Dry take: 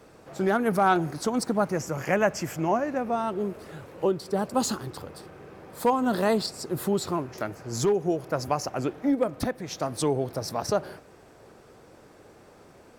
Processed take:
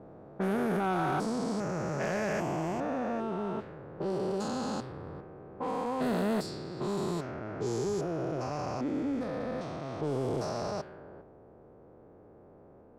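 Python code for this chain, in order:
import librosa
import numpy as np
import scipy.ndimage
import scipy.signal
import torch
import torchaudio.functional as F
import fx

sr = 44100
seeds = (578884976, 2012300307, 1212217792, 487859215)

y = fx.spec_steps(x, sr, hold_ms=400)
y = 10.0 ** (-22.5 / 20.0) * np.tanh(y / 10.0 ** (-22.5 / 20.0))
y = fx.env_lowpass(y, sr, base_hz=630.0, full_db=-26.5)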